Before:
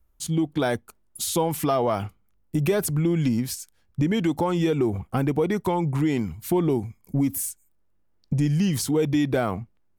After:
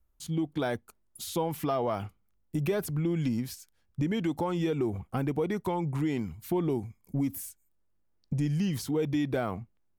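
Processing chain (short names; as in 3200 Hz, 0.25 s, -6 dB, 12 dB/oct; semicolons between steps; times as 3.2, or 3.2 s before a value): dynamic EQ 8500 Hz, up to -7 dB, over -45 dBFS, Q 0.9; gain -6.5 dB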